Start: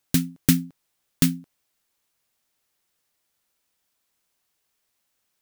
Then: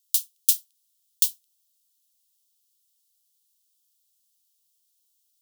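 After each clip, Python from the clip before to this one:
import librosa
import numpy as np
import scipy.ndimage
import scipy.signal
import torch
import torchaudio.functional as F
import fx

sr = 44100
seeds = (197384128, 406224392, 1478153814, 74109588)

y = scipy.signal.sosfilt(scipy.signal.butter(8, 3000.0, 'highpass', fs=sr, output='sos'), x)
y = fx.high_shelf(y, sr, hz=4700.0, db=10.0)
y = y * 10.0 ** (-4.0 / 20.0)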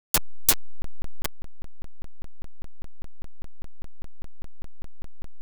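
y = fx.delta_hold(x, sr, step_db=-14.0)
y = fx.buffer_crackle(y, sr, first_s=0.82, period_s=0.2, block=1024, kind='zero')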